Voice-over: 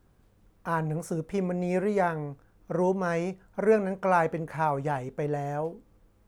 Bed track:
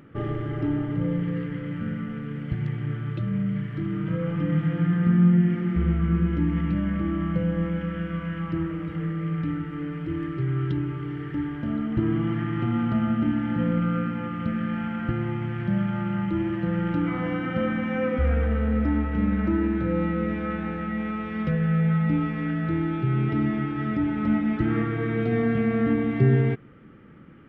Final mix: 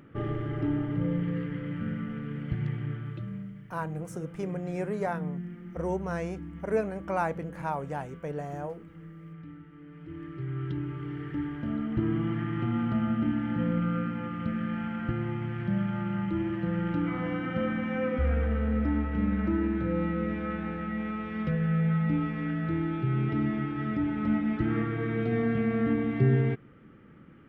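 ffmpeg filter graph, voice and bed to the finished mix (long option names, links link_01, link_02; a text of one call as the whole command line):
ffmpeg -i stem1.wav -i stem2.wav -filter_complex "[0:a]adelay=3050,volume=-5.5dB[link_01];[1:a]volume=10.5dB,afade=type=out:start_time=2.7:duration=0.85:silence=0.188365,afade=type=in:start_time=9.84:duration=1.34:silence=0.211349[link_02];[link_01][link_02]amix=inputs=2:normalize=0" out.wav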